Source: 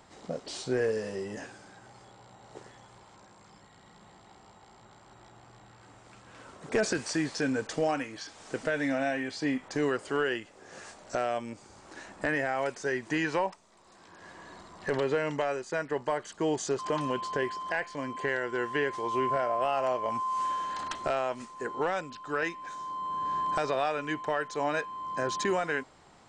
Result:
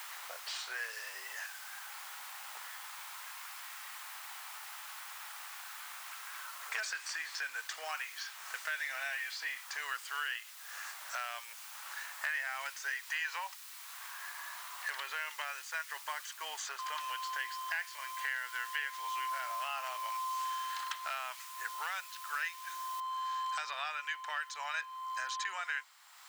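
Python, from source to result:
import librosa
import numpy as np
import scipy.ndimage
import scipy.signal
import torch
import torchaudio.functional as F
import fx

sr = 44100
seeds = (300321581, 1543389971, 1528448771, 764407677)

y = fx.noise_floor_step(x, sr, seeds[0], at_s=23.0, before_db=-51, after_db=-68, tilt_db=0.0)
y = scipy.signal.sosfilt(scipy.signal.butter(4, 1100.0, 'highpass', fs=sr, output='sos'), y)
y = fx.dynamic_eq(y, sr, hz=3400.0, q=0.71, threshold_db=-46.0, ratio=4.0, max_db=3)
y = fx.band_squash(y, sr, depth_pct=70)
y = y * 10.0 ** (-3.0 / 20.0)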